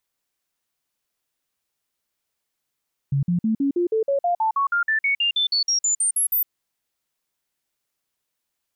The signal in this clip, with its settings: stepped sine 139 Hz up, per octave 3, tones 21, 0.11 s, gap 0.05 s -17.5 dBFS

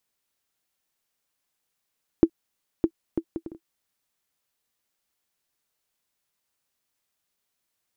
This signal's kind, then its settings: bouncing ball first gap 0.61 s, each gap 0.55, 329 Hz, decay 67 ms -4.5 dBFS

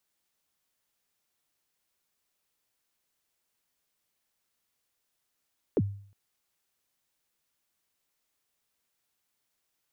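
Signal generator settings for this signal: kick drum length 0.36 s, from 520 Hz, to 100 Hz, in 44 ms, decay 0.53 s, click off, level -19 dB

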